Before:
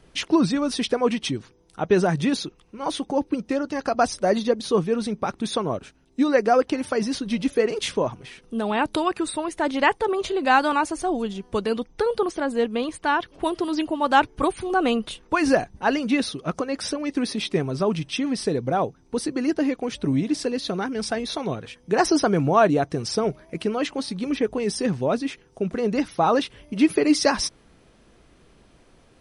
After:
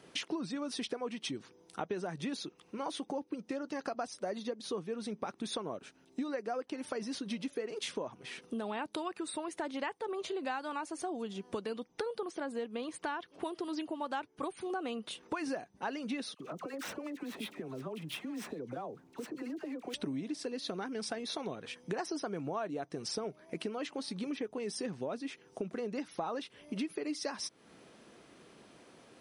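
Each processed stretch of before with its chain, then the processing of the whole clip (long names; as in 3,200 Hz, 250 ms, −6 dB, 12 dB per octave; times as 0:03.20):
0:16.34–0:19.94: running median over 9 samples + downward compressor 12 to 1, threshold −35 dBFS + all-pass dispersion lows, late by 62 ms, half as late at 1,100 Hz
whole clip: high-pass filter 190 Hz 12 dB per octave; downward compressor 6 to 1, threshold −36 dBFS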